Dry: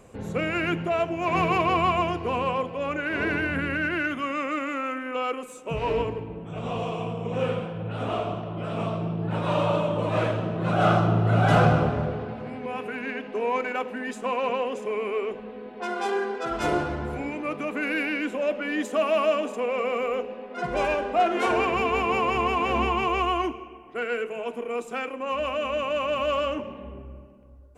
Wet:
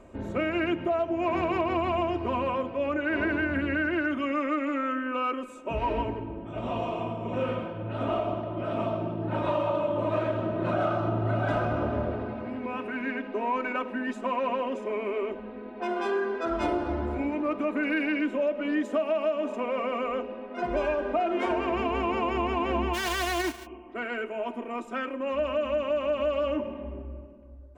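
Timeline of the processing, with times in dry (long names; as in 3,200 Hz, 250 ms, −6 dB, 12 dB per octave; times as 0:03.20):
0:22.93–0:23.65: spectral envelope flattened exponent 0.1
whole clip: low-pass filter 1,800 Hz 6 dB per octave; comb filter 3.2 ms, depth 74%; downward compressor 10 to 1, threshold −23 dBFS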